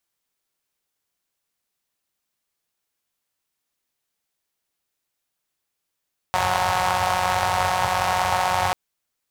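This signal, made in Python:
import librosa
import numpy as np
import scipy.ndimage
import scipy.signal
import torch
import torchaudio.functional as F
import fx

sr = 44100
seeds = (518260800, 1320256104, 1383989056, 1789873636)

y = fx.engine_four(sr, seeds[0], length_s=2.39, rpm=5500, resonances_hz=(94.0, 810.0))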